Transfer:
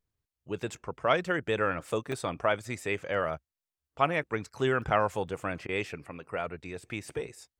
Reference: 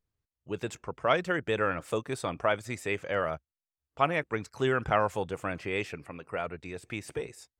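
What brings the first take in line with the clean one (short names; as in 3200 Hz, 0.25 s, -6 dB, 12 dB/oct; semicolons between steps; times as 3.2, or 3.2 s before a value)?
interpolate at 2.12/3.75/4.82/5.28, 1.7 ms; interpolate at 5.67, 17 ms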